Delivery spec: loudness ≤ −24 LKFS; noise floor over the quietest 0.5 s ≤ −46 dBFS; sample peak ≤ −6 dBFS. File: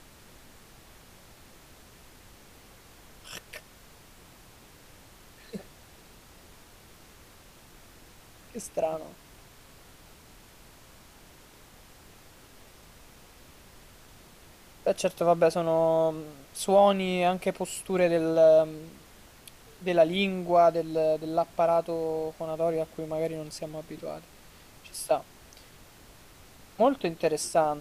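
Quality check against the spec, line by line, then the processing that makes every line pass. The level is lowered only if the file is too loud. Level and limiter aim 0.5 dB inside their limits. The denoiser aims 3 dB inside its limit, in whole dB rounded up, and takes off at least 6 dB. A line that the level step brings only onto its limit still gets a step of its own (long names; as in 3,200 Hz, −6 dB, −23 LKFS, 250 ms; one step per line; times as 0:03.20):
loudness −26.5 LKFS: in spec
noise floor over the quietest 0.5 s −53 dBFS: in spec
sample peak −10.5 dBFS: in spec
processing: no processing needed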